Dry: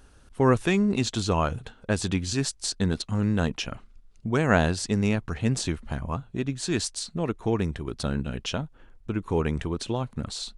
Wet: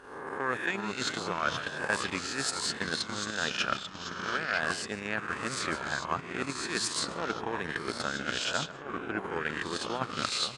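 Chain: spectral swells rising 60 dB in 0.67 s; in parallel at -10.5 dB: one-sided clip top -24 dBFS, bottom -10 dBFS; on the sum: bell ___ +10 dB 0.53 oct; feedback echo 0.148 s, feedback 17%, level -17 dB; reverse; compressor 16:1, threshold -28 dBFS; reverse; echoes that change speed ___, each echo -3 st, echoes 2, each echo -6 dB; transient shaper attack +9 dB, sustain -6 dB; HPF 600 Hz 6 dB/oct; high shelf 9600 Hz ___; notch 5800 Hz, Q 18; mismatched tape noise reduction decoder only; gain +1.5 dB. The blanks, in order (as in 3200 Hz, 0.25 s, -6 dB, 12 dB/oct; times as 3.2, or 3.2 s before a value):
1600 Hz, 0.272 s, -9 dB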